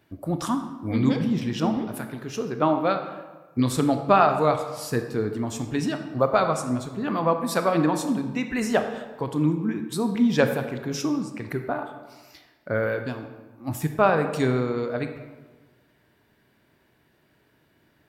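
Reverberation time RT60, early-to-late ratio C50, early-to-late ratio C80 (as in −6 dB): 1.3 s, 8.0 dB, 10.0 dB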